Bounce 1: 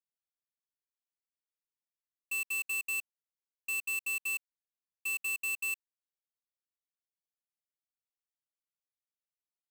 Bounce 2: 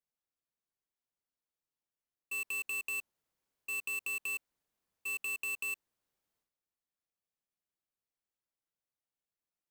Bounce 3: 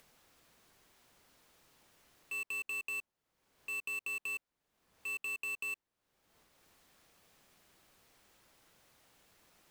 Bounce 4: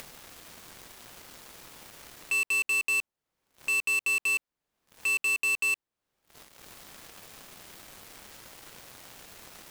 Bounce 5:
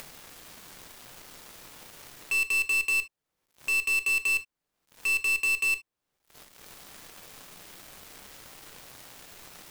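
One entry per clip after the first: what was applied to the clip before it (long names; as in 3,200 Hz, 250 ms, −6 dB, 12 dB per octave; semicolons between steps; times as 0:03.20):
tilt shelving filter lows +4.5 dB, about 1,400 Hz; transient designer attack −1 dB, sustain +11 dB
high-shelf EQ 5,400 Hz −8 dB; upward compression, threshold −43 dBFS
leveller curve on the samples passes 5; in parallel at +2 dB: brickwall limiter −35.5 dBFS, peak gain reduction 8 dB
one scale factor per block 3 bits; on a send at −10.5 dB: convolution reverb, pre-delay 7 ms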